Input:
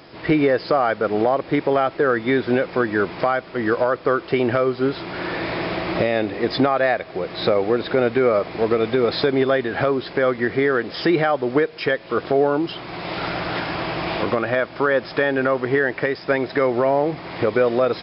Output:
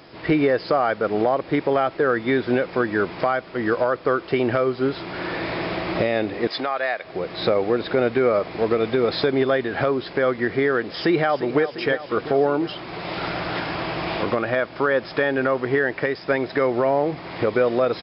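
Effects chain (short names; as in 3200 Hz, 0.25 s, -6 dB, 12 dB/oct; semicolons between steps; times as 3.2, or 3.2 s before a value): 6.47–7.04 HPF 970 Hz 6 dB/oct; 10.94–11.62 echo throw 0.35 s, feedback 70%, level -12.5 dB; gain -1.5 dB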